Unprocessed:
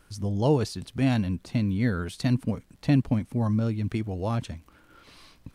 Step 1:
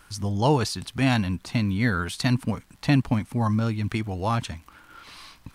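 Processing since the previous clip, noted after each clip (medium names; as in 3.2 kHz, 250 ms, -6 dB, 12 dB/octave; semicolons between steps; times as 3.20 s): resonant low shelf 700 Hz -6 dB, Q 1.5; trim +7.5 dB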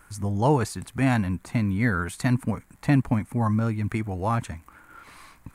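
high-order bell 4 kHz -10.5 dB 1.3 oct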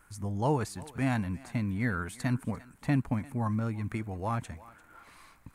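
thinning echo 346 ms, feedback 37%, high-pass 410 Hz, level -18.5 dB; trim -7 dB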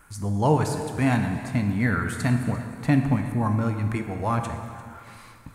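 plate-style reverb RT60 2.2 s, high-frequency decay 0.8×, DRR 5 dB; trim +6.5 dB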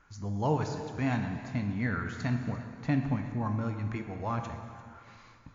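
trim -7.5 dB; MP3 40 kbps 16 kHz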